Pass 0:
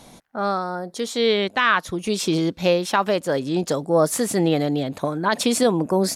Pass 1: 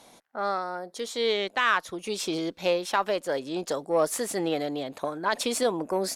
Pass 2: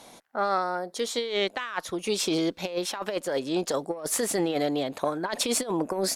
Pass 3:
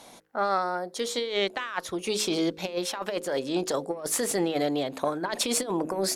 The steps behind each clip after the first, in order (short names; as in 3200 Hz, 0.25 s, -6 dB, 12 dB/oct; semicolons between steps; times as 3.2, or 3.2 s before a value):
added harmonics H 6 -30 dB, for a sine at -5.5 dBFS; tone controls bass -13 dB, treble -1 dB; gain -5 dB
negative-ratio compressor -28 dBFS, ratio -0.5; gain +2 dB
de-hum 52.94 Hz, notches 10